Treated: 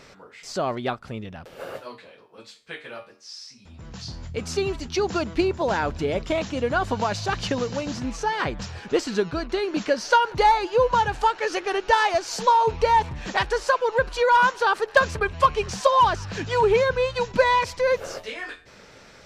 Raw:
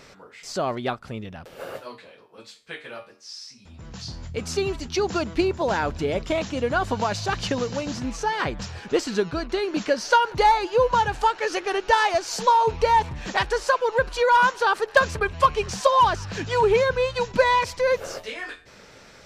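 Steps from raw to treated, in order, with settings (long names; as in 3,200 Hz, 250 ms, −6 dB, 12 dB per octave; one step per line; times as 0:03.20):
high-shelf EQ 8,500 Hz −4 dB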